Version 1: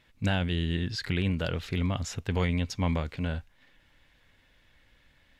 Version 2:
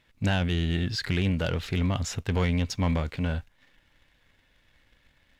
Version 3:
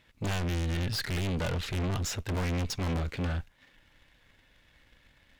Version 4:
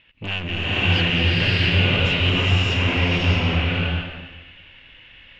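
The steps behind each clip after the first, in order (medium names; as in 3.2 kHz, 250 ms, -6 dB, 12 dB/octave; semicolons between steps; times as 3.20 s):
waveshaping leveller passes 1
valve stage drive 28 dB, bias 0.75; sine folder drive 6 dB, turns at -24.5 dBFS; trim -3.5 dB
resonant low-pass 2.8 kHz, resonance Q 7.4; swelling reverb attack 620 ms, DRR -9 dB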